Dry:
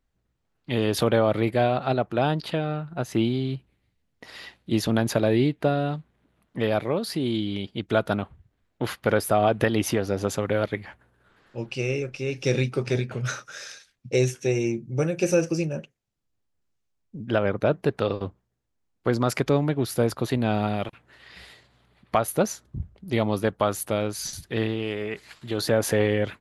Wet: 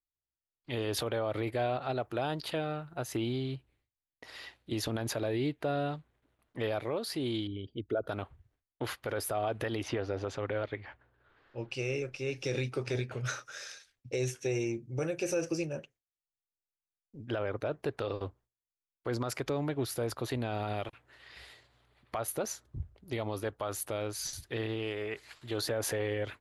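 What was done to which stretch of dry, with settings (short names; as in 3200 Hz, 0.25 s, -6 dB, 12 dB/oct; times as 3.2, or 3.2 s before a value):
1.97–3.17 high shelf 8200 Hz +9.5 dB
7.47–8.09 formant sharpening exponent 2
9.83–11.71 LPF 3800 Hz
whole clip: gate with hold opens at -58 dBFS; bell 190 Hz -12.5 dB 0.56 oct; limiter -18 dBFS; gain -5 dB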